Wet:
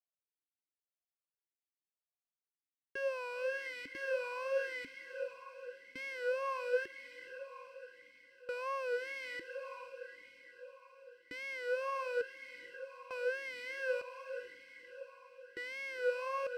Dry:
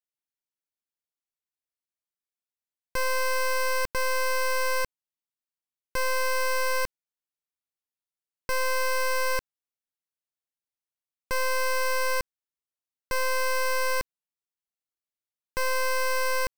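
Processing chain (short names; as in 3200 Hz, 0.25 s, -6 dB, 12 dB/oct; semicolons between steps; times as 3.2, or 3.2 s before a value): wow and flutter 94 cents; diffused feedback echo 0.471 s, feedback 58%, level -9 dB; vowel sweep a-i 0.92 Hz; gain +1 dB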